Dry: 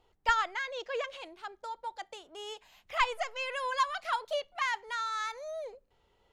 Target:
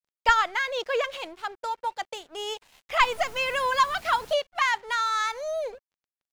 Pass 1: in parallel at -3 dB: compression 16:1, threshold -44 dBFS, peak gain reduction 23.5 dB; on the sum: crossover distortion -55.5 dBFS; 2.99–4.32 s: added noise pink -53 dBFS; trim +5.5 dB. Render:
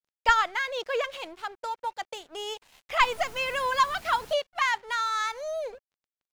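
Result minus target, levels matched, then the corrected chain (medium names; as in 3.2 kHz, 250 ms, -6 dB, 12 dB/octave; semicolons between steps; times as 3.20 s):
compression: peak gain reduction +9.5 dB
in parallel at -3 dB: compression 16:1, threshold -34 dBFS, peak gain reduction 14 dB; on the sum: crossover distortion -55.5 dBFS; 2.99–4.32 s: added noise pink -53 dBFS; trim +5.5 dB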